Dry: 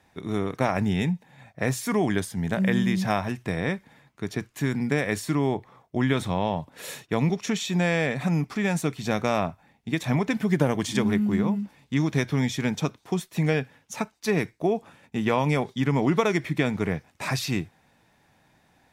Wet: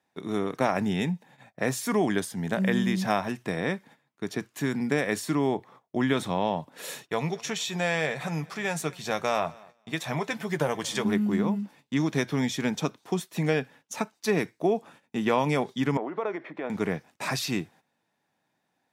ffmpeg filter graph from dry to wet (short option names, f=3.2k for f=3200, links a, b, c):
-filter_complex "[0:a]asettb=1/sr,asplit=3[a][b][c];[a]atrim=end=7.094[d];[b]atrim=start=7.09:end=11.05,asetpts=PTS-STARTPTS,afade=t=in:d=0.004:c=qsin,afade=t=out:st=3.956:d=0.004:c=qsin,equalizer=f=250:w=1.4:g=-11,asplit=2[e][f];[f]adelay=13,volume=-11dB[g];[e][g]amix=inputs=2:normalize=0,atrim=end_sample=174636,aecho=1:1:226|452|678:0.0631|0.0328|0.0171,atrim=end_sample=174636[h];[c]atrim=start=11.046[i];[d][h]acrossfade=d=0.004:c1=hsin:c2=qsin[j];[j][i]acrossfade=d=0.004:c1=qsin:c2=hsin,asettb=1/sr,asplit=3[k][l][m];[k]atrim=end=15.974[n];[l]atrim=start=15.97:end=16.7,asetpts=PTS-STARTPTS,afade=t=in:d=0.004:c=qsin,afade=t=out:st=0.726:d=0.004:c=qsin,tiltshelf=f=1.2k:g=6,acompressor=threshold=-19dB:ratio=10:attack=3.2:release=140:knee=1:detection=peak,highpass=510,lowpass=2.3k[o];[m]atrim=start=16.696[p];[n][o]acrossfade=d=0.004:c1=hsin:c2=qsin[q];[q][p]acrossfade=d=0.004:c1=qsin:c2=hsin,agate=range=-13dB:threshold=-49dB:ratio=16:detection=peak,highpass=180,equalizer=f=2.2k:t=o:w=0.4:g=-2.5"